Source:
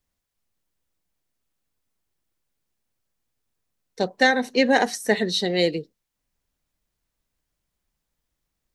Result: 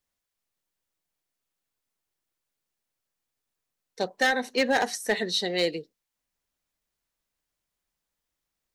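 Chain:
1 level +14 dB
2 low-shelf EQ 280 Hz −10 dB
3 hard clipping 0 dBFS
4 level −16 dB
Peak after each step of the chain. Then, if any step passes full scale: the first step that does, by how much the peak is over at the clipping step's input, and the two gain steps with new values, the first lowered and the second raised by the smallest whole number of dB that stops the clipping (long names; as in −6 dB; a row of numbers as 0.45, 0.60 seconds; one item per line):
+8.5, +8.5, 0.0, −16.0 dBFS
step 1, 8.5 dB
step 1 +5 dB, step 4 −7 dB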